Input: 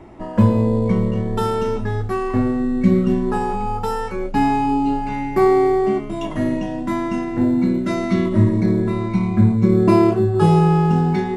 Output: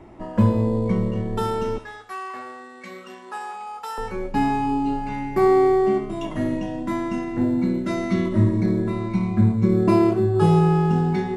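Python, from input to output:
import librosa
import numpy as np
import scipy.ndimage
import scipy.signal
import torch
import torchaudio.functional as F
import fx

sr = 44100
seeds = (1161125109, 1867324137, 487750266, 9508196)

y = fx.highpass(x, sr, hz=1000.0, slope=12, at=(1.78, 3.98))
y = fx.echo_feedback(y, sr, ms=66, feedback_pct=56, wet_db=-16)
y = y * 10.0 ** (-3.5 / 20.0)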